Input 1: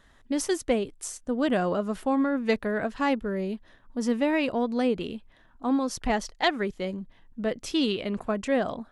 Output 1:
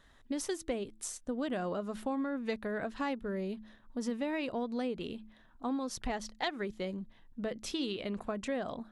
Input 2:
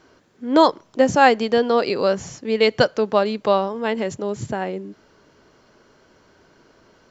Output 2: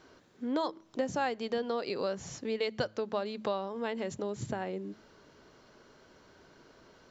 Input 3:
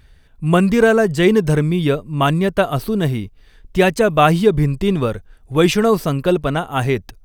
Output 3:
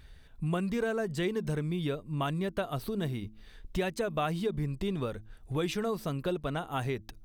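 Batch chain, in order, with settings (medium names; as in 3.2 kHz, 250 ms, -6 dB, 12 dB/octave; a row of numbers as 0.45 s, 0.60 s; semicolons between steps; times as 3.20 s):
compression 3:1, threshold -29 dBFS; peaking EQ 3.8 kHz +4 dB 0.22 oct; de-hum 108.3 Hz, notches 3; trim -4 dB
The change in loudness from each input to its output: -9.0 LU, -15.5 LU, -16.5 LU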